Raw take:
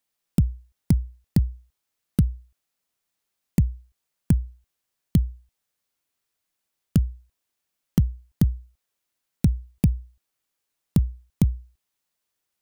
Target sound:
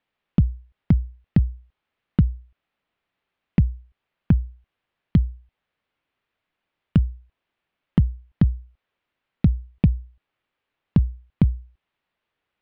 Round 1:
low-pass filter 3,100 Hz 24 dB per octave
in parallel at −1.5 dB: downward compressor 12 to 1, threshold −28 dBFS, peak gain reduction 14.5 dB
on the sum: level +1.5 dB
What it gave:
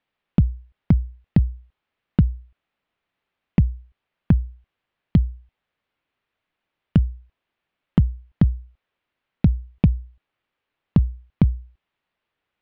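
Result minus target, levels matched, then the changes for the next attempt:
downward compressor: peak gain reduction −8.5 dB
change: downward compressor 12 to 1, threshold −37 dBFS, peak gain reduction 22.5 dB

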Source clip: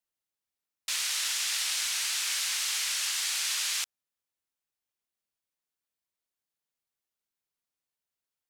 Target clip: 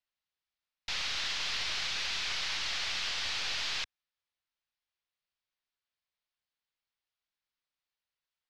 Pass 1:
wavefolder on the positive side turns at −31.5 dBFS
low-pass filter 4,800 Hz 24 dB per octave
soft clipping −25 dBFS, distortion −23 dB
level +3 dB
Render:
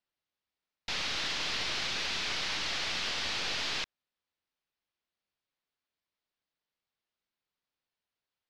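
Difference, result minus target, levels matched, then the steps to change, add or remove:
250 Hz band +9.0 dB
add after low-pass filter: parametric band 280 Hz −10.5 dB 2.7 octaves

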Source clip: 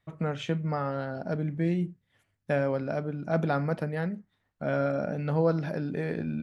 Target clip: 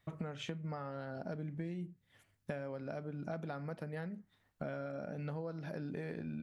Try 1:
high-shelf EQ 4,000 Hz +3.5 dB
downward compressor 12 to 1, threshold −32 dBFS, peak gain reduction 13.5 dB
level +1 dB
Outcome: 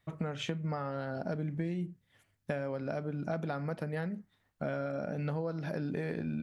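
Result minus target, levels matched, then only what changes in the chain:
downward compressor: peak gain reduction −6.5 dB
change: downward compressor 12 to 1, threshold −39 dBFS, peak gain reduction 20 dB

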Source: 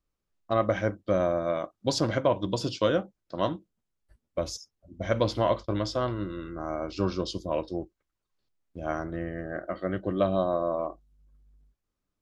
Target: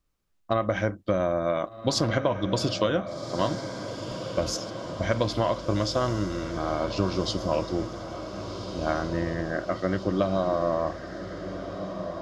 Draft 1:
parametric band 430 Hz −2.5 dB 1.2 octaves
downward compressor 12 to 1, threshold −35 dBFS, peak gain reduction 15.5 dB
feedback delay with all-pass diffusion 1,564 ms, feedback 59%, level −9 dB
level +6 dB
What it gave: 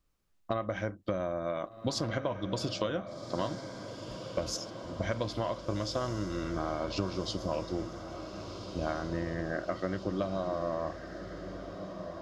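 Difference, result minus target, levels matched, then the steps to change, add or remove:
downward compressor: peak gain reduction +8 dB
change: downward compressor 12 to 1, threshold −26 dBFS, peak gain reduction 7.5 dB

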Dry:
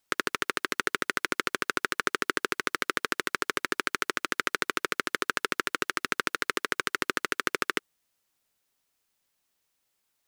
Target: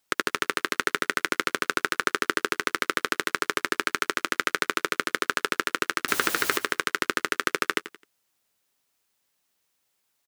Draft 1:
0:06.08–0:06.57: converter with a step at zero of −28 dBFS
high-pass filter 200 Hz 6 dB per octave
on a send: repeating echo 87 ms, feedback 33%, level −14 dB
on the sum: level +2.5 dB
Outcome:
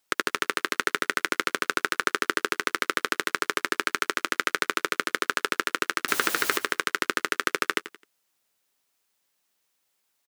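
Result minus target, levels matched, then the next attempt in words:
125 Hz band −3.5 dB
0:06.08–0:06.57: converter with a step at zero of −28 dBFS
high-pass filter 74 Hz 6 dB per octave
on a send: repeating echo 87 ms, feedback 33%, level −14 dB
on the sum: level +2.5 dB

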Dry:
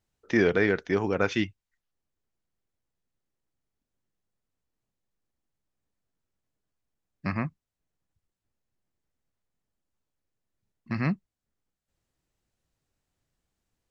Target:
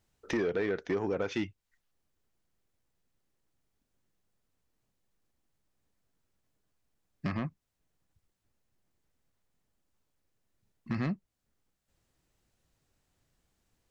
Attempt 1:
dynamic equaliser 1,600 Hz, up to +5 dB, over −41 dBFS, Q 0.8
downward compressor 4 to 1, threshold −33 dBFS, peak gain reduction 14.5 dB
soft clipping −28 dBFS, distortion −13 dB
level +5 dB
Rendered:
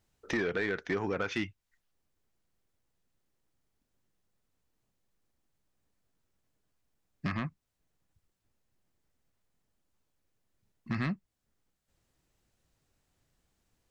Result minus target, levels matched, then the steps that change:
2,000 Hz band +5.5 dB
change: dynamic equaliser 490 Hz, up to +5 dB, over −41 dBFS, Q 0.8

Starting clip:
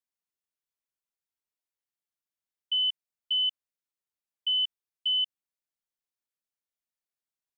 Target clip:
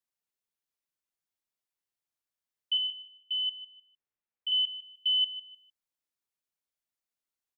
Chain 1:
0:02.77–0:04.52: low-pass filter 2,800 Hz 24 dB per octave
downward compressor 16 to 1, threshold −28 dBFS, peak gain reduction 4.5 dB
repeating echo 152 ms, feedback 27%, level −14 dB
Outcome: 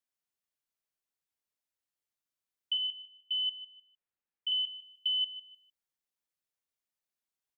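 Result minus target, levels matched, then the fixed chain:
downward compressor: peak gain reduction +4.5 dB
0:02.77–0:04.52: low-pass filter 2,800 Hz 24 dB per octave
repeating echo 152 ms, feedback 27%, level −14 dB

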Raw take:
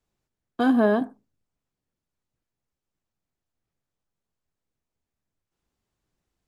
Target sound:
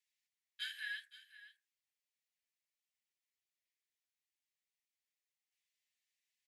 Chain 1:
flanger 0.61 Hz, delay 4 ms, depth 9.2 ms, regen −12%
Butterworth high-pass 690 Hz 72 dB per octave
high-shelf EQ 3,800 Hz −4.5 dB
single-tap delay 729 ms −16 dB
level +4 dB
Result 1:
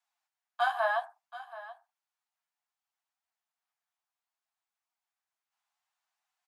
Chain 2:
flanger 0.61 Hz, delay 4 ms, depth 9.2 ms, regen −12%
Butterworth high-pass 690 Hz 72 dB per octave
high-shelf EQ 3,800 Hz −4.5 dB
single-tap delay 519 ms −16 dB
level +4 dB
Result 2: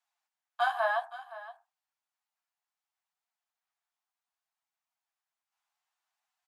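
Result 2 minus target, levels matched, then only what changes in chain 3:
2,000 Hz band −3.0 dB
change: Butterworth high-pass 1,800 Hz 72 dB per octave

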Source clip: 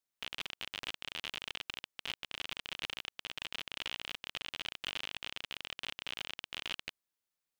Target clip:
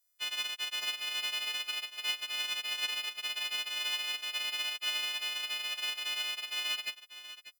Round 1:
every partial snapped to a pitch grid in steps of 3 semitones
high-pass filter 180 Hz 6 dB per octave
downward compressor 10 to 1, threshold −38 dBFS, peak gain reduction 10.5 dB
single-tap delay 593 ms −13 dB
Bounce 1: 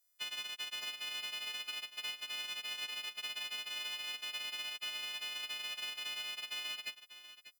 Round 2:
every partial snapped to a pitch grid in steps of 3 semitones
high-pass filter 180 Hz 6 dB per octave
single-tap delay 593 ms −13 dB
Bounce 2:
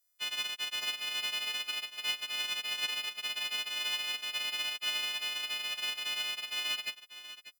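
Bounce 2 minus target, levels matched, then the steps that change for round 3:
250 Hz band +3.0 dB
change: high-pass filter 370 Hz 6 dB per octave

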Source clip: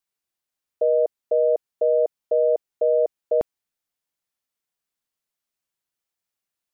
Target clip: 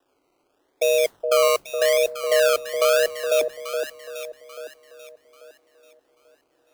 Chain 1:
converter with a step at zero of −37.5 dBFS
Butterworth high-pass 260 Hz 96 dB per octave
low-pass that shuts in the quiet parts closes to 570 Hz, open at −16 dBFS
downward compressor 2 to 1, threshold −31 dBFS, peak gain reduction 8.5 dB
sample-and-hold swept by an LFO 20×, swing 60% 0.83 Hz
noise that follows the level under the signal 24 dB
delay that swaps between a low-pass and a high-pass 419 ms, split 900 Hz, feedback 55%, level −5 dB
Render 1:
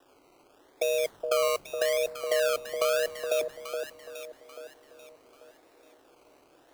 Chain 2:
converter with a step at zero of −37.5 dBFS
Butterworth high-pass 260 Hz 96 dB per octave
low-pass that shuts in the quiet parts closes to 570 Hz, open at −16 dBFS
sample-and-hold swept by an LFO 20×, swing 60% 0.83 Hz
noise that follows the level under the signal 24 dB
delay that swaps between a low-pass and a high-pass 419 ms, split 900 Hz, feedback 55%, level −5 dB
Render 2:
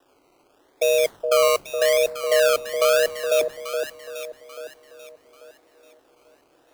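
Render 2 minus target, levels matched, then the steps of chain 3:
converter with a step at zero: distortion +7 dB
converter with a step at zero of −45 dBFS
Butterworth high-pass 260 Hz 96 dB per octave
low-pass that shuts in the quiet parts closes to 570 Hz, open at −16 dBFS
sample-and-hold swept by an LFO 20×, swing 60% 0.83 Hz
noise that follows the level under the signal 24 dB
delay that swaps between a low-pass and a high-pass 419 ms, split 900 Hz, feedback 55%, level −5 dB

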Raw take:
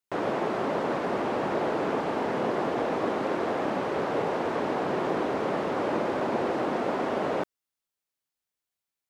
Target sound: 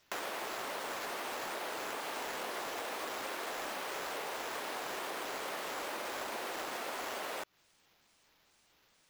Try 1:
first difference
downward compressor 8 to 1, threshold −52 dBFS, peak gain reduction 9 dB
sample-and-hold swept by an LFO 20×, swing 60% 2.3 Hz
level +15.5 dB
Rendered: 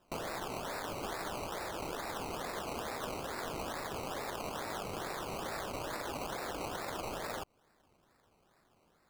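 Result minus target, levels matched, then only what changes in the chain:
sample-and-hold swept by an LFO: distortion +17 dB
change: sample-and-hold swept by an LFO 4×, swing 60% 2.3 Hz

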